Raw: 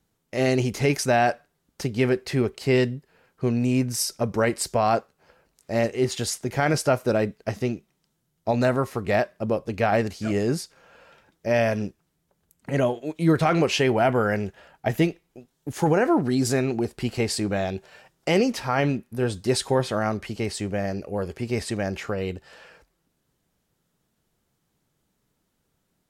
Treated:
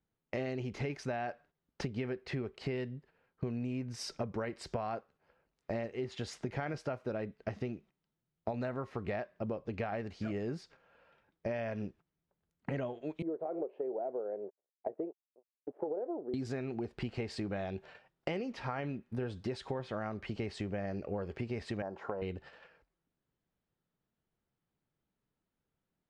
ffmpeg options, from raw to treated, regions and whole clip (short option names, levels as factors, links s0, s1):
-filter_complex "[0:a]asettb=1/sr,asplit=3[s0][s1][s2];[s0]atrim=end=13.224[s3];[s1]atrim=start=13.22:end=16.34,asetpts=PTS-STARTPTS,afade=t=in:d=0.004:c=qsin,afade=t=out:st=3.116:d=0.004:c=qsin,aeval=exprs='sgn(val(0))*max(abs(val(0))-0.00631,0)':c=same,asuperpass=centerf=490:order=4:qfactor=1.6[s4];[s2]atrim=start=16.336[s5];[s3][s4]acrossfade=d=0.004:c1=hsin:c2=qsin[s6];[s6][s5]acrossfade=d=0.004:c1=qsin:c2=hsin,asettb=1/sr,asplit=3[s7][s8][s9];[s7]atrim=end=21.824[s10];[s8]atrim=start=21.82:end=22.22,asetpts=PTS-STARTPTS,afade=t=in:d=0.004:c=qsin,afade=t=out:st=0.396:d=0.004:c=qsin,highpass=f=470:p=1,highshelf=f=1600:t=q:w=3:g=-13.5,bandreject=f=1200:w=5.1[s11];[s9]atrim=start=22.216[s12];[s10][s11]acrossfade=d=0.004:c1=hsin:c2=qsin[s13];[s13][s12]acrossfade=d=0.004:c1=qsin:c2=hsin,agate=range=0.224:threshold=0.00501:ratio=16:detection=peak,lowpass=3200,acompressor=threshold=0.02:ratio=12"